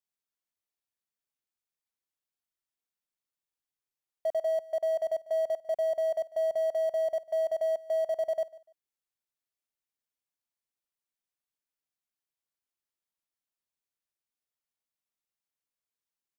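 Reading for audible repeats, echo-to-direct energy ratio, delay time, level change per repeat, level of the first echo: 2, -19.5 dB, 0.147 s, -12.0 dB, -20.0 dB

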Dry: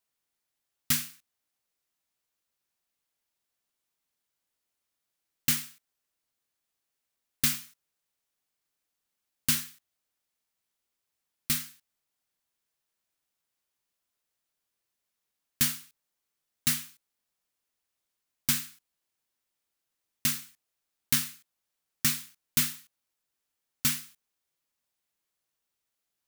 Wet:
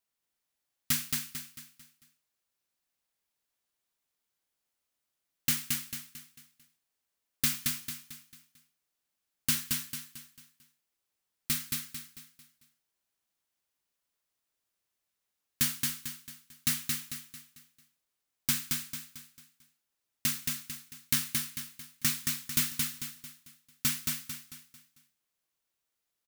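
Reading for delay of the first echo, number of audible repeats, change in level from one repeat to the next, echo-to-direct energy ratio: 0.223 s, 4, -8.0 dB, -2.5 dB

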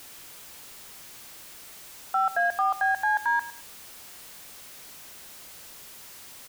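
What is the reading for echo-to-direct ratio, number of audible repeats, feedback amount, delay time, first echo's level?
-16.0 dB, 2, 25%, 0.107 s, -16.0 dB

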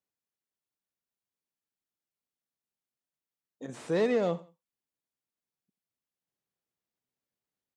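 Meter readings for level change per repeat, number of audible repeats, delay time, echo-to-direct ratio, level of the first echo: -11.0 dB, 2, 86 ms, -18.5 dB, -19.0 dB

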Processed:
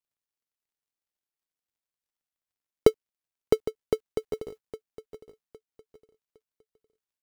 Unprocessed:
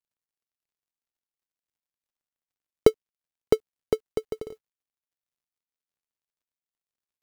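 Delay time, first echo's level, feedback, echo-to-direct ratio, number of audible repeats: 0.81 s, -14.5 dB, 29%, -14.0 dB, 2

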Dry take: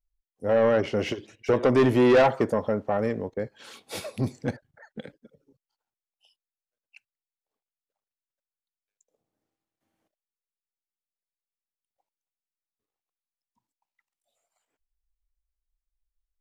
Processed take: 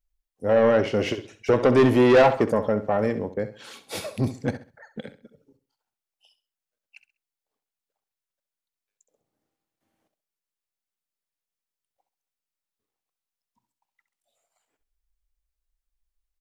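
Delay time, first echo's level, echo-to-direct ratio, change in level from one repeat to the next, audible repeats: 66 ms, -13.0 dB, -12.5 dB, -11.0 dB, 3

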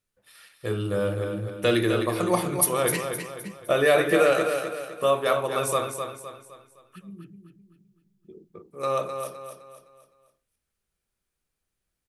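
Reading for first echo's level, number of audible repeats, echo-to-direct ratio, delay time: -7.0 dB, 4, -6.0 dB, 0.257 s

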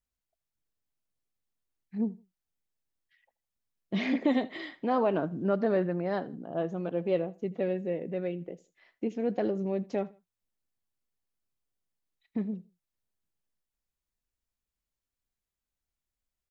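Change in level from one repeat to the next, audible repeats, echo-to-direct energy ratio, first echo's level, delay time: -11.0 dB, 2, -21.5 dB, -22.0 dB, 80 ms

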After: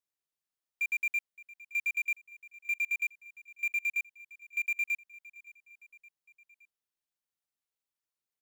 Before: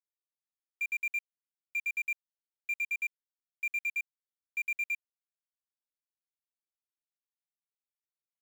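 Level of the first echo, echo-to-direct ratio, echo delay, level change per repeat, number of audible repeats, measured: -20.0 dB, -18.5 dB, 0.568 s, -5.0 dB, 3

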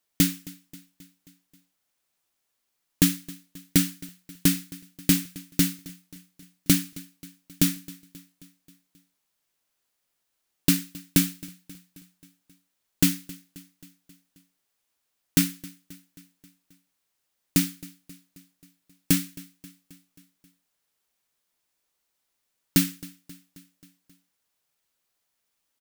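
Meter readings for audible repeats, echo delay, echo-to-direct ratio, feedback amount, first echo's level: 4, 0.267 s, -19.0 dB, 60%, -21.0 dB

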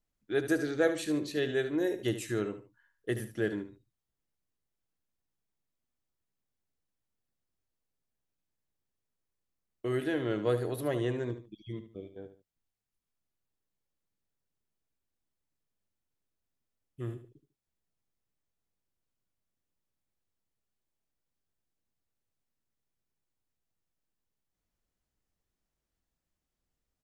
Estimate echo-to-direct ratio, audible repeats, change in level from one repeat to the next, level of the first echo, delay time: -10.5 dB, 2, -11.0 dB, -11.0 dB, 74 ms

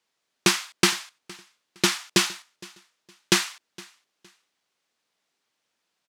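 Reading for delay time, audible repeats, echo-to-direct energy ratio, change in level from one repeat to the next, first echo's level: 0.463 s, 2, -22.5 dB, -11.5 dB, -23.0 dB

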